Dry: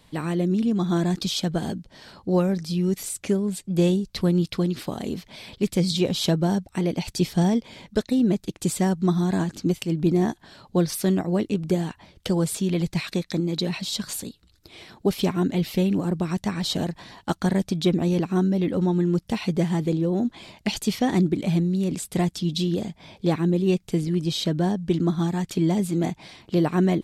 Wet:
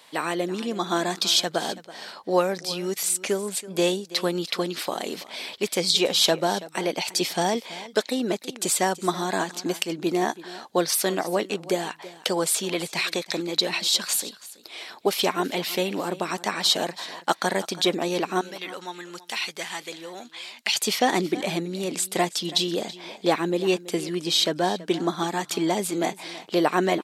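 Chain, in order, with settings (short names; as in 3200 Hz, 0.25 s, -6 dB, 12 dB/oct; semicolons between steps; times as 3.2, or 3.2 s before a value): HPF 580 Hz 12 dB/oct, from 18.41 s 1400 Hz, from 20.76 s 520 Hz; echo 0.329 s -17.5 dB; gain +7.5 dB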